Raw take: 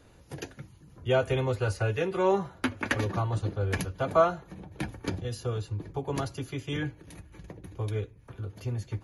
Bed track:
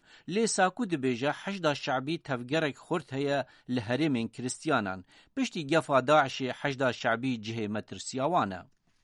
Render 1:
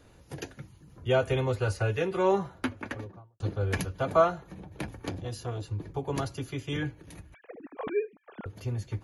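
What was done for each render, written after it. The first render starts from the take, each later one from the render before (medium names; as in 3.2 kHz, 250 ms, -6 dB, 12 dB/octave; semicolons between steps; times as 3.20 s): 2.38–3.40 s: studio fade out; 4.27–5.63 s: transformer saturation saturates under 560 Hz; 7.34–8.46 s: formants replaced by sine waves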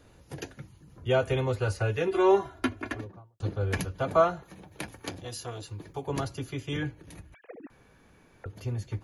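2.07–3.01 s: comb 2.9 ms, depth 92%; 4.43–6.07 s: tilt EQ +2 dB/octave; 7.70–8.44 s: room tone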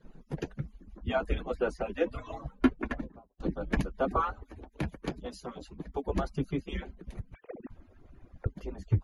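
harmonic-percussive separation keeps percussive; RIAA curve playback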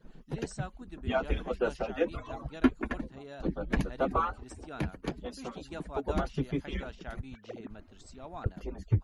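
add bed track -17 dB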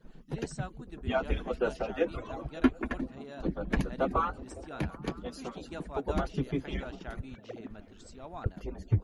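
repeats whose band climbs or falls 185 ms, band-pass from 180 Hz, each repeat 0.7 oct, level -11 dB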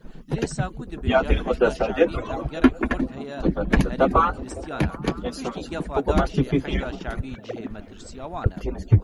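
trim +10.5 dB; peak limiter -3 dBFS, peak gain reduction 2.5 dB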